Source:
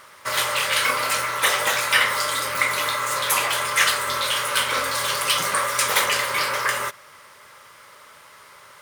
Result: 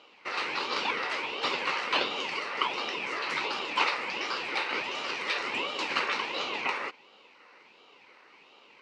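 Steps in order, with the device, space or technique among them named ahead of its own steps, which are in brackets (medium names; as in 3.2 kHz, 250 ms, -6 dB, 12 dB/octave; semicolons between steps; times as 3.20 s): voice changer toy (ring modulator with a swept carrier 1.2 kHz, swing 50%, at 1.4 Hz; cabinet simulation 450–4100 Hz, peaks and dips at 670 Hz -10 dB, 960 Hz +3 dB, 1.7 kHz -6 dB, 3.4 kHz -9 dB); trim -1.5 dB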